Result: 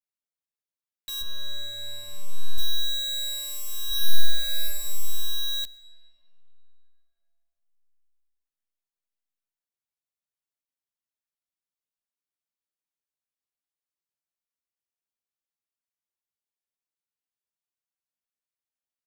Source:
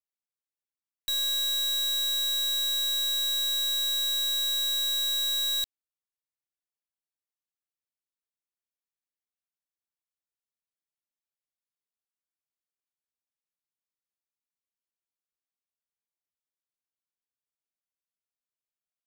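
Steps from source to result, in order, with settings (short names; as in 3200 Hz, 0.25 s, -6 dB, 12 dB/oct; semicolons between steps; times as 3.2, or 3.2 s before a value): 1.21–2.58 tilt -3.5 dB/oct; reverb RT60 4.0 s, pre-delay 70 ms, DRR 16.5 dB; 3.87–4.64 reverb throw, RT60 1.5 s, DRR -5 dB; endless flanger 10.6 ms +0.73 Hz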